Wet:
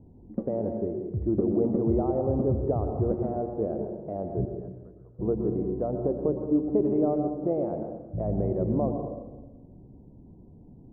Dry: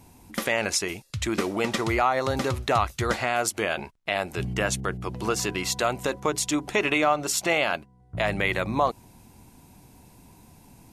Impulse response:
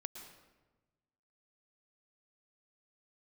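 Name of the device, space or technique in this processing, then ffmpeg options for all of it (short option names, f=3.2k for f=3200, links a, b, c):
next room: -filter_complex "[0:a]asettb=1/sr,asplit=3[a][b][c];[a]atrim=end=4.454[d];[b]atrim=start=4.45:end=5.19,asetpts=PTS-STARTPTS,afade=t=in:d=0.004:c=qsin,afade=t=out:st=0.736:d=0.004:c=qsin,aderivative[e];[c]atrim=start=5.186[f];[d][e]acrossfade=d=0.004:c1=hsin:c2=qsin[g];[g][f]acrossfade=d=0.004:c1=qsin:c2=hsin,lowpass=f=530:w=0.5412,lowpass=f=530:w=1.3066[h];[1:a]atrim=start_sample=2205[i];[h][i]afir=irnorm=-1:irlink=0,volume=6dB"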